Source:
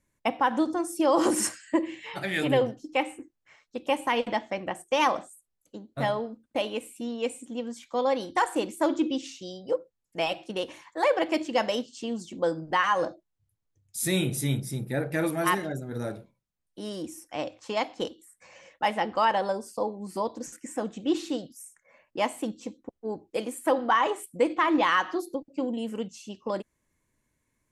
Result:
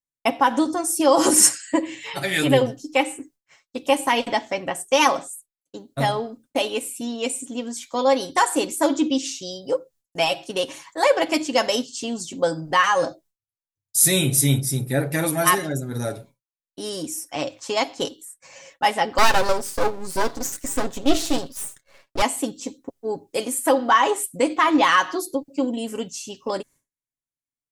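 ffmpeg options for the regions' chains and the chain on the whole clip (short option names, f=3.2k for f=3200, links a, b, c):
-filter_complex "[0:a]asettb=1/sr,asplit=3[a][b][c];[a]atrim=end=19.184[d];[b]atrim=start=19.18:end=22.22,asetpts=PTS-STARTPTS,afade=t=in:d=0.004:c=qsin,afade=t=out:st=3.036:d=0.004:c=qsin,highshelf=f=8.8k:g=-4,acontrast=59,aeval=exprs='max(val(0),0)':c=same[e];[c]atrim=start=22.216[f];[d][e]acrossfade=d=0.004:c1=hsin:c2=qsin[g];[g][f]acrossfade=d=0.004:c1=qsin:c2=hsin,agate=range=-33dB:threshold=-51dB:ratio=3:detection=peak,bass=f=250:g=0,treble=f=4k:g=10,aecho=1:1:7.3:0.52,volume=4.5dB"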